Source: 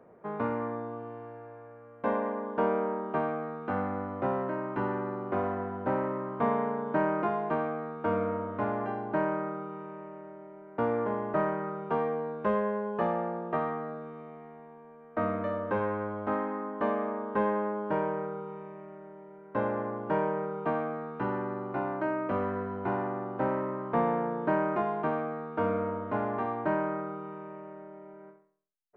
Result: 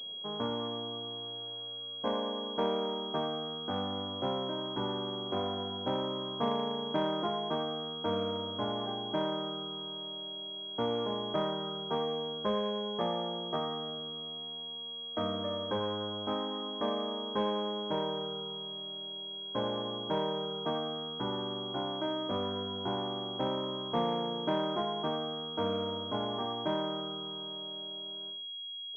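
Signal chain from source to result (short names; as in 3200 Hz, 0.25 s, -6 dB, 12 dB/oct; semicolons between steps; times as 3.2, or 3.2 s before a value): Wiener smoothing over 9 samples; pulse-width modulation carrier 3300 Hz; gain -3.5 dB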